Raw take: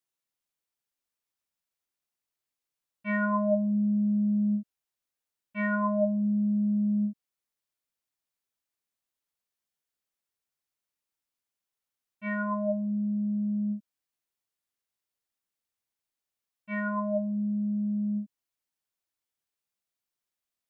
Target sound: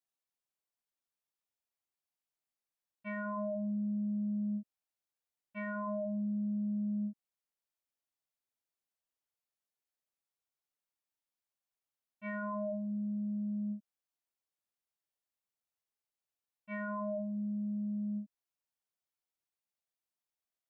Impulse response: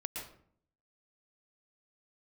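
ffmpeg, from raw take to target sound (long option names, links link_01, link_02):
-af "equalizer=frequency=710:width_type=o:width=1.2:gain=4.5,alimiter=limit=-23.5dB:level=0:latency=1:release=29,volume=-7.5dB"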